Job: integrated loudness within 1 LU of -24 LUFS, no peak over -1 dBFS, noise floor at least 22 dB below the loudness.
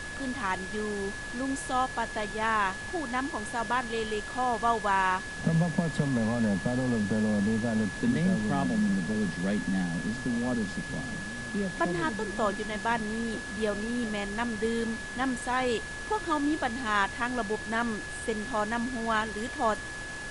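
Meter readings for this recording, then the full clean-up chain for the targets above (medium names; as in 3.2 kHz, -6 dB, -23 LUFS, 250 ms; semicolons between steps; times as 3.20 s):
steady tone 1.7 kHz; tone level -38 dBFS; noise floor -38 dBFS; noise floor target -52 dBFS; loudness -30.0 LUFS; peak level -13.0 dBFS; loudness target -24.0 LUFS
-> band-stop 1.7 kHz, Q 30; noise print and reduce 14 dB; trim +6 dB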